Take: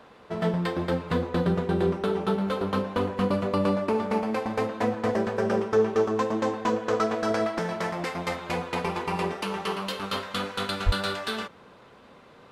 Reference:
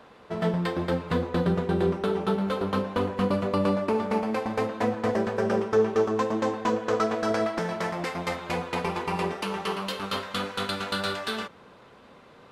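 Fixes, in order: de-plosive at 10.85

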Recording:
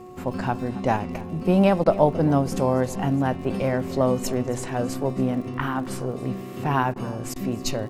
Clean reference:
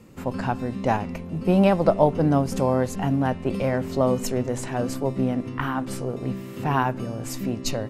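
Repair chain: de-click; de-hum 365.5 Hz, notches 3; interpolate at 1.84/6.94/7.34, 18 ms; inverse comb 0.271 s -18.5 dB

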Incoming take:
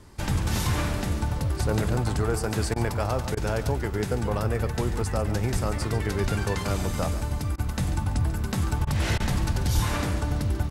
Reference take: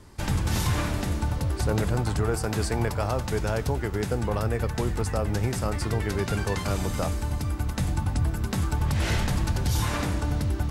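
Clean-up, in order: 5.52–5.64 HPF 140 Hz 24 dB/oct; 6.22–6.34 HPF 140 Hz 24 dB/oct; 9.74–9.86 HPF 140 Hz 24 dB/oct; interpolate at 2.74/3.35/7.56/8.85/9.18, 19 ms; inverse comb 0.141 s -12.5 dB

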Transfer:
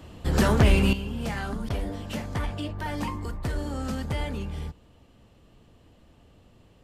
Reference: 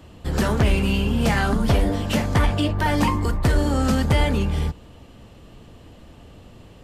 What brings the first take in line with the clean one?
interpolate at 1.69, 10 ms; gain correction +11 dB, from 0.93

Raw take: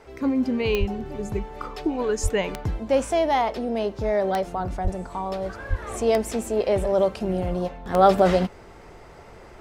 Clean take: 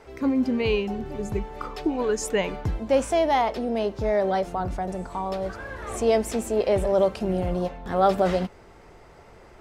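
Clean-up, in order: de-click; de-plosive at 0.79/2.22/4.83/5.69; gain 0 dB, from 7.94 s -4 dB

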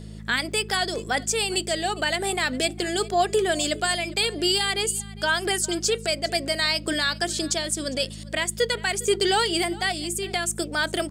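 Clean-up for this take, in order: de-hum 53.2 Hz, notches 4; interpolate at 0.52, 1.5 ms; inverse comb 0.405 s -21 dB

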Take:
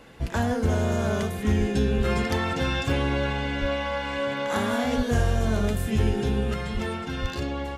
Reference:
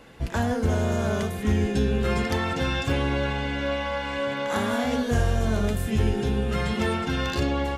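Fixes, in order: de-plosive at 1.58/1.97/3.6/4.96/6.73/7.21; gain 0 dB, from 6.54 s +5 dB

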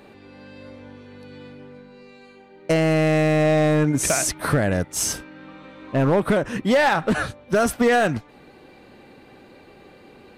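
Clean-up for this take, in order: clip repair -12 dBFS

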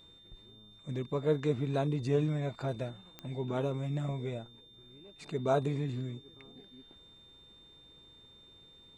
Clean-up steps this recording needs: de-click; notch 3600 Hz, Q 30

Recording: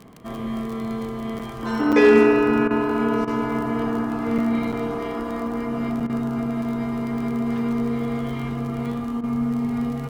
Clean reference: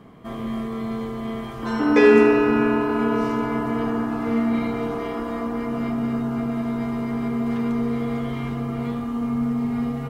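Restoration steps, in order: clip repair -7 dBFS; de-click; interpolate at 1.39/1.92/4.38/4.72/6, 6.5 ms; interpolate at 2.68/3.25/6.07/9.21, 24 ms

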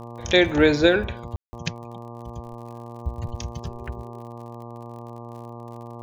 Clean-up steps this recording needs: de-click; de-hum 118.1 Hz, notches 10; room tone fill 1.36–1.53

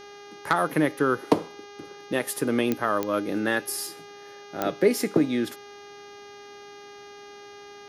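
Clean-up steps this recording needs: de-click; de-hum 406.8 Hz, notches 16

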